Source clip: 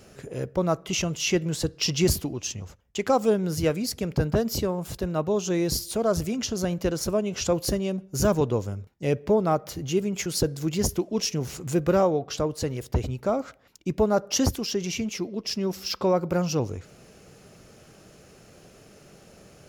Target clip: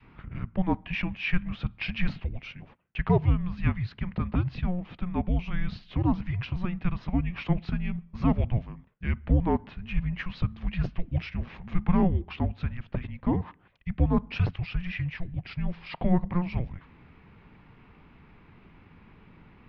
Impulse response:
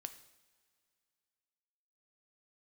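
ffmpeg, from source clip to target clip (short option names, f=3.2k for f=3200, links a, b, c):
-af "highpass=f=190:t=q:w=0.5412,highpass=f=190:t=q:w=1.307,lowpass=f=3.3k:t=q:w=0.5176,lowpass=f=3.3k:t=q:w=0.7071,lowpass=f=3.3k:t=q:w=1.932,afreqshift=-360,adynamicequalizer=threshold=0.01:dfrequency=420:dqfactor=0.82:tfrequency=420:tqfactor=0.82:attack=5:release=100:ratio=0.375:range=2.5:mode=cutabove:tftype=bell"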